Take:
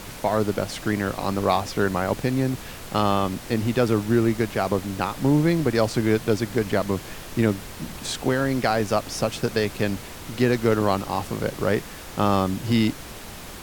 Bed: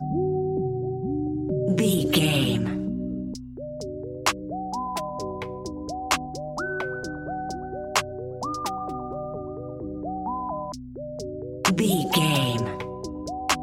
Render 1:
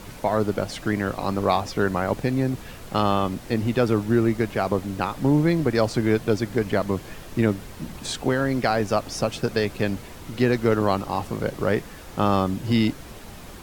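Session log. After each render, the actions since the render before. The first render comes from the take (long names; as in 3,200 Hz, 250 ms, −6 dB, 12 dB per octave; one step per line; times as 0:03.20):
broadband denoise 6 dB, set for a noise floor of −39 dBFS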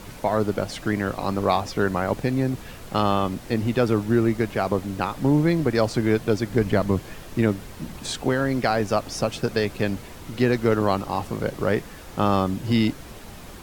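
0:06.52–0:07.00: low-shelf EQ 220 Hz +6.5 dB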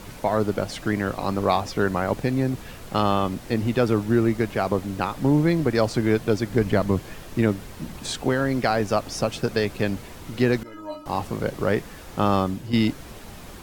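0:10.63–0:11.06: stiff-string resonator 300 Hz, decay 0.28 s, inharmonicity 0.008
0:12.32–0:12.73: fade out equal-power, to −9.5 dB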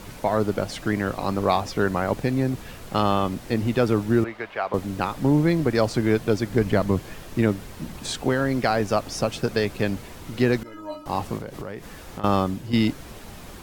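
0:04.24–0:04.74: three-way crossover with the lows and the highs turned down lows −19 dB, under 530 Hz, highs −20 dB, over 3,700 Hz
0:11.37–0:12.24: downward compressor 10 to 1, threshold −29 dBFS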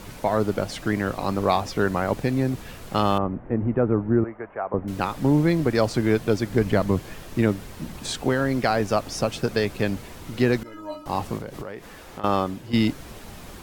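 0:03.18–0:04.88: Gaussian smoothing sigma 5.5 samples
0:11.63–0:12.74: bass and treble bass −6 dB, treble −3 dB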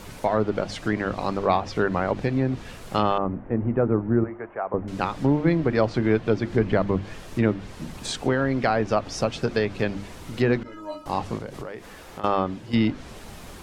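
treble cut that deepens with the level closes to 3,000 Hz, closed at −17.5 dBFS
mains-hum notches 50/100/150/200/250/300/350 Hz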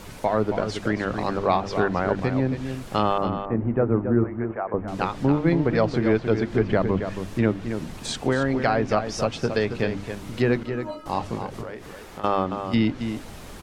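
slap from a distant wall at 47 metres, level −8 dB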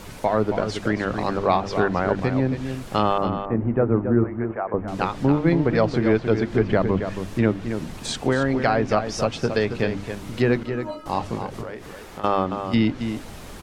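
level +1.5 dB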